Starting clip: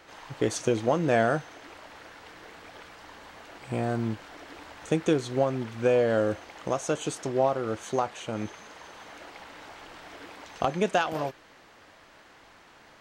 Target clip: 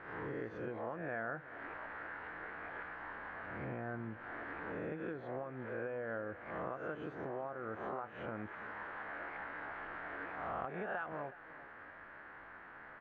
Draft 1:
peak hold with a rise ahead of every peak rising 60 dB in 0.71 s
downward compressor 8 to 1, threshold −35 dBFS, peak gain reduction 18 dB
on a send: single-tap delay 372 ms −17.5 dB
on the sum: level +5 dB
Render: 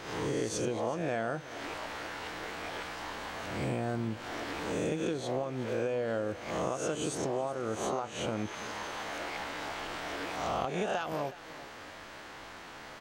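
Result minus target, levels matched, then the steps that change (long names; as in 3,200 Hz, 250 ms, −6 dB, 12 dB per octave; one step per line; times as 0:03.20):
2,000 Hz band −5.5 dB
add after downward compressor: transistor ladder low-pass 1,900 Hz, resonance 55%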